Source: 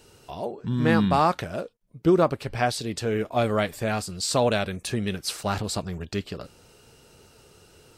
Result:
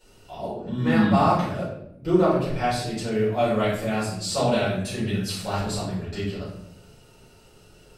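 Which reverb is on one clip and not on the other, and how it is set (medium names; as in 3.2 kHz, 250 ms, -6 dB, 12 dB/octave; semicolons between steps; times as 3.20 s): simulated room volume 160 m³, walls mixed, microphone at 4.6 m; trim -13.5 dB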